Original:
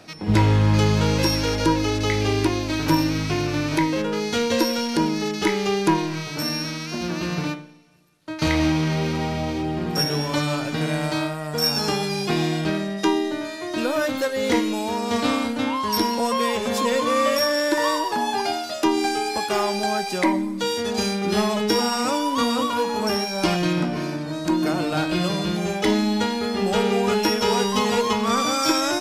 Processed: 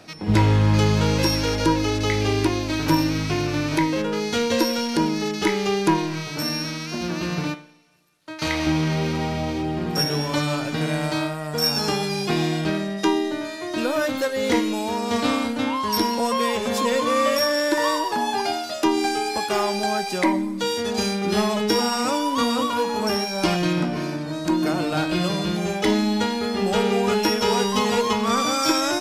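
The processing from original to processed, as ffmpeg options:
ffmpeg -i in.wav -filter_complex "[0:a]asettb=1/sr,asplit=3[link_01][link_02][link_03];[link_01]atrim=end=7.544[link_04];[link_02]atrim=start=7.54:end=8.67,asetpts=PTS-STARTPTS,afade=type=in:duration=0.004:curve=qsin,afade=type=out:start_time=1.126:duration=0.004:curve=qsin,lowshelf=frequency=430:gain=-8.5[link_05];[link_03]atrim=start=8.666[link_06];[link_04][link_05]acrossfade=duration=0.004:curve1=hsin:curve2=qsin[link_07];[link_07][link_06]acrossfade=duration=0.004:curve1=qsin:curve2=hsin" out.wav

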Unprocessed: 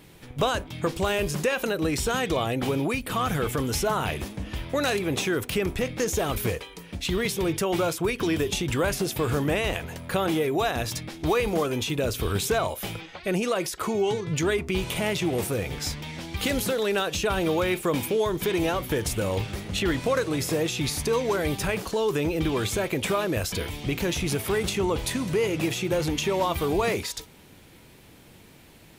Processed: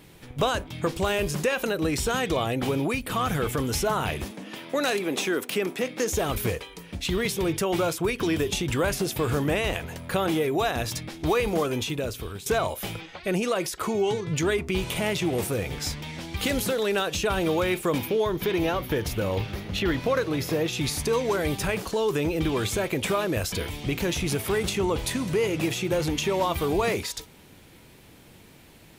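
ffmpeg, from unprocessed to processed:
ffmpeg -i in.wav -filter_complex "[0:a]asettb=1/sr,asplit=3[link_01][link_02][link_03];[link_01]atrim=end=4.314[link_04];[link_02]atrim=start=4.31:end=6.12,asetpts=PTS-STARTPTS,afade=type=in:duration=0.004:curve=qsin,afade=type=out:start_time=1.806:duration=0.004:curve=qsin,highpass=frequency=200:width=0.5412,highpass=frequency=200:width=1.3066[link_05];[link_03]atrim=start=6.116[link_06];[link_04][link_05]acrossfade=duration=0.004:curve1=hsin:curve2=qsin[link_07];[link_07][link_06]acrossfade=duration=0.004:curve1=qsin:curve2=hsin,asettb=1/sr,asplit=3[link_08][link_09][link_10];[link_08]atrim=end=17.984[link_11];[link_09]atrim=start=17.98:end=20.73,asetpts=PTS-STARTPTS,afade=type=in:duration=0.004:curve=qsin,afade=type=out:start_time=2.746:duration=0.004:curve=qsin,equalizer=frequency=8300:width=1.7:gain=-11.5[link_12];[link_10]atrim=start=20.726[link_13];[link_11][link_12]acrossfade=duration=0.004:curve1=hsin:curve2=qsin[link_14];[link_14][link_13]acrossfade=duration=0.004:curve1=qsin:curve2=hsin,asplit=2[link_15][link_16];[link_15]atrim=end=12.46,asetpts=PTS-STARTPTS,afade=type=out:start_time=11.76:duration=0.7:silence=0.158489[link_17];[link_16]atrim=start=12.46,asetpts=PTS-STARTPTS,afade=type=in:duration=0.004:curve=hsin:silence=0.158489[link_18];[link_17][link_18]concat=n=2:v=0:a=1" out.wav

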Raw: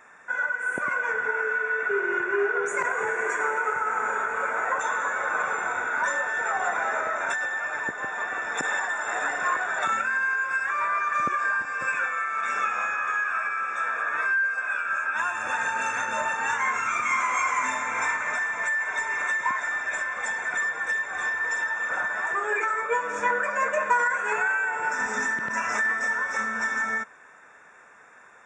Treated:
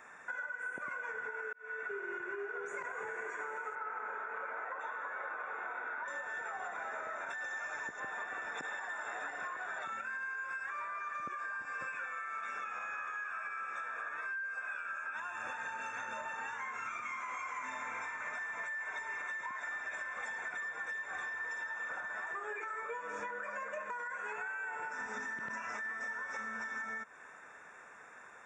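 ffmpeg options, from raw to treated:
ffmpeg -i in.wav -filter_complex "[0:a]asettb=1/sr,asplit=3[link_01][link_02][link_03];[link_01]atrim=end=3.754[link_04];[link_02]atrim=start=3.75:end=6.08,asetpts=PTS-STARTPTS,afade=type=in:duration=0.004:curve=qsin,afade=type=out:start_time=2.326:duration=0.004:curve=qsin,acrossover=split=230 3400:gain=0.0708 1 0.0708[link_05][link_06][link_07];[link_05][link_06][link_07]amix=inputs=3:normalize=0[link_08];[link_03]atrim=start=6.076[link_09];[link_04][link_08]acrossfade=duration=0.004:curve1=hsin:curve2=qsin[link_10];[link_10][link_09]acrossfade=duration=0.004:curve1=qsin:curve2=hsin,asettb=1/sr,asplit=3[link_11][link_12][link_13];[link_11]atrim=end=7.444[link_14];[link_12]atrim=start=7.44:end=8,asetpts=PTS-STARTPTS,afade=type=in:duration=0.004:curve=qsin,afade=type=out:start_time=0.556:duration=0.004:curve=qsin,lowpass=frequency=6400:width_type=q:width=5[link_15];[link_13]atrim=start=7.996[link_16];[link_14][link_15]acrossfade=duration=0.004:curve1=hsin:curve2=qsin[link_17];[link_17][link_16]acrossfade=duration=0.004:curve1=qsin:curve2=hsin,asplit=2[link_18][link_19];[link_18]atrim=end=1.53,asetpts=PTS-STARTPTS,afade=type=out:start_time=1.526:duration=0.004:curve=hsin[link_20];[link_19]atrim=start=1.53,asetpts=PTS-STARTPTS,afade=type=in:duration=1:curve=qsin[link_21];[link_20][link_21]concat=n=2:v=0:a=1,acrossover=split=6400[link_22][link_23];[link_23]acompressor=threshold=-58dB:ratio=4:attack=1:release=60[link_24];[link_22][link_24]amix=inputs=2:normalize=0,alimiter=limit=-20dB:level=0:latency=1:release=249,acompressor=threshold=-36dB:ratio=6,volume=-2.5dB" out.wav

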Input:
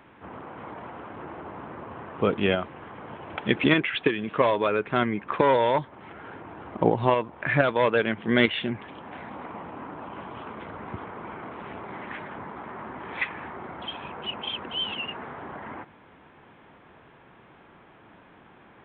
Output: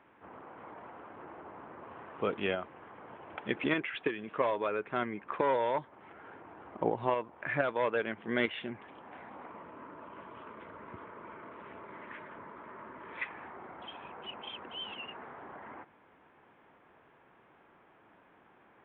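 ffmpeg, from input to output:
ffmpeg -i in.wav -filter_complex "[0:a]asettb=1/sr,asplit=3[link_01][link_02][link_03];[link_01]atrim=end=1.834[link_04];[link_02]atrim=start=1.83:end=2.51,asetpts=PTS-STARTPTS,afade=type=in:duration=0.004:curve=qsin,afade=type=out:start_time=0.676:duration=0.004:curve=qsin,highshelf=frequency=2800:gain=7.5[link_05];[link_03]atrim=start=2.506[link_06];[link_04][link_05]acrossfade=duration=0.004:curve1=hsin:curve2=qsin[link_07];[link_07][link_06]acrossfade=duration=0.004:curve1=qsin:curve2=hsin,asettb=1/sr,asplit=3[link_08][link_09][link_10];[link_08]atrim=end=9.504[link_11];[link_09]atrim=start=9.5:end=13.23,asetpts=PTS-STARTPTS,afade=type=in:duration=0.004:curve=qsin,afade=type=out:start_time=3.726:duration=0.004:curve=qsin,asuperstop=centerf=770:order=4:qfactor=5.5[link_12];[link_10]atrim=start=13.226[link_13];[link_11][link_12]acrossfade=duration=0.004:curve1=hsin:curve2=qsin[link_14];[link_14][link_13]acrossfade=duration=0.004:curve1=qsin:curve2=hsin,bass=frequency=250:gain=-7,treble=frequency=4000:gain=-14,volume=-8dB" out.wav

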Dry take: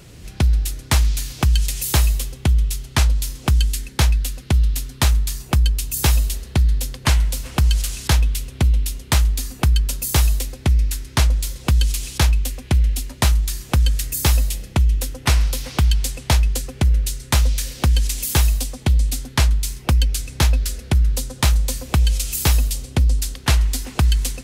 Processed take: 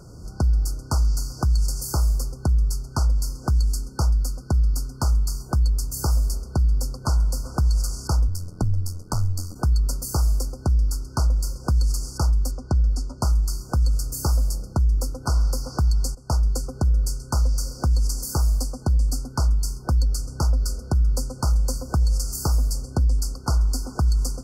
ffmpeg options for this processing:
ffmpeg -i in.wav -filter_complex "[0:a]asplit=3[link_01][link_02][link_03];[link_01]afade=type=out:start_time=8.27:duration=0.02[link_04];[link_02]aeval=exprs='val(0)*sin(2*PI*43*n/s)':channel_layout=same,afade=type=in:start_time=8.27:duration=0.02,afade=type=out:start_time=9.54:duration=0.02[link_05];[link_03]afade=type=in:start_time=9.54:duration=0.02[link_06];[link_04][link_05][link_06]amix=inputs=3:normalize=0,asettb=1/sr,asplit=3[link_07][link_08][link_09];[link_07]atrim=end=12.514[link_10];[link_08]atrim=start=12.51:end=13.21,asetpts=PTS-STARTPTS,afade=type=in:duration=0.004:curve=qsin,afade=type=out:start_time=0.696:duration=0.004:curve=qsin,lowpass=6700[link_11];[link_09]atrim=start=13.206[link_12];[link_10][link_11]acrossfade=duration=0.004:curve1=hsin:curve2=qsin[link_13];[link_13][link_12]acrossfade=duration=0.004:curve1=qsin:curve2=hsin,asplit=2[link_14][link_15];[link_14]atrim=end=16.15,asetpts=PTS-STARTPTS,afade=type=out:start_time=16.146:duration=0.004:curve=hsin:silence=0.149624[link_16];[link_15]atrim=start=16.15,asetpts=PTS-STARTPTS,afade=type=in:duration=0.6:curve=qsin:silence=0.149624[link_17];[link_16][link_17]concat=n=2:v=0:a=1,afftfilt=real='re*(1-between(b*sr/4096,1500,4400))':imag='im*(1-between(b*sr/4096,1500,4400))':win_size=4096:overlap=0.75,highshelf=frequency=8700:gain=-12,alimiter=limit=-13.5dB:level=0:latency=1:release=100" out.wav

